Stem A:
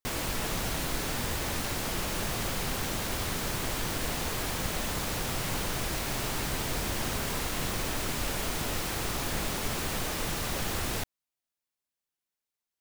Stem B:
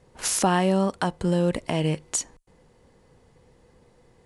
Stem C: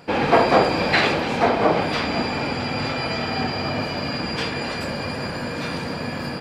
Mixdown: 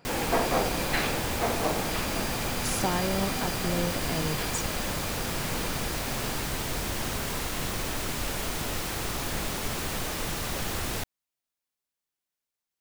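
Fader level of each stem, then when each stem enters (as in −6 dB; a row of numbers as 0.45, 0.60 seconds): +0.5, −8.0, −11.0 decibels; 0.00, 2.40, 0.00 seconds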